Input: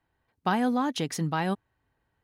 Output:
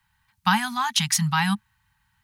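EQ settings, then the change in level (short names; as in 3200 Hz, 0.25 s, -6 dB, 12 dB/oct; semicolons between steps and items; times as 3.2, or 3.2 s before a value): Chebyshev band-stop 210–850 Hz, order 4; high shelf 2500 Hz +10 dB; +6.5 dB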